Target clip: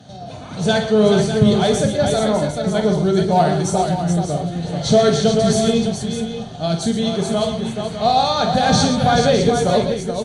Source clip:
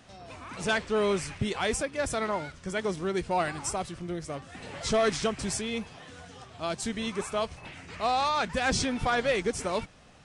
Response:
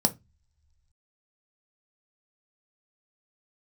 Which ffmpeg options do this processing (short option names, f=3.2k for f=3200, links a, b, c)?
-filter_complex "[0:a]aecho=1:1:47|113|133|430|605|650:0.422|0.266|0.237|0.501|0.335|0.119[a];[1:a]atrim=start_sample=2205,asetrate=34398,aresample=44100[b];[a][b]afir=irnorm=-1:irlink=0,volume=-4.5dB"